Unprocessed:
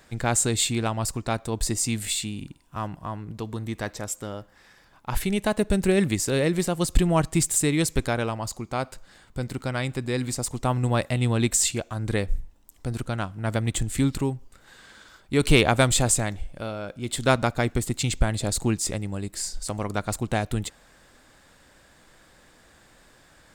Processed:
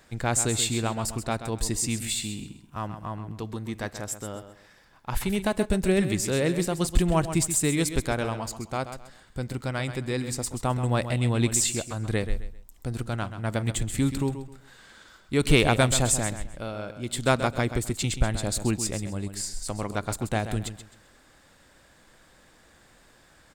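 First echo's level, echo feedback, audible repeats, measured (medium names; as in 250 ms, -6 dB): -10.5 dB, 28%, 3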